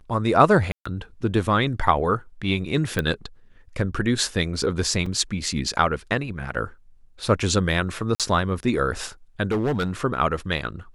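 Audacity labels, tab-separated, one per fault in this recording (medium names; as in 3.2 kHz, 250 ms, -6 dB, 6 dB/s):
0.720000	0.850000	dropout 135 ms
2.990000	2.990000	pop -10 dBFS
5.060000	5.060000	dropout 3.7 ms
8.150000	8.200000	dropout 47 ms
9.510000	9.910000	clipped -19 dBFS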